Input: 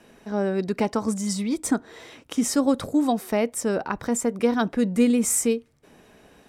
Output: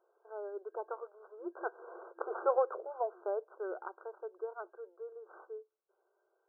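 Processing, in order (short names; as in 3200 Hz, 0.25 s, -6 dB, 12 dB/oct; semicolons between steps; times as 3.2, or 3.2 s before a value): tracing distortion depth 0.041 ms; Doppler pass-by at 2.22, 17 m/s, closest 2.8 m; in parallel at -9 dB: one-sided clip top -30 dBFS; on the sum: FFT band-pass 340–1600 Hz; gain +2.5 dB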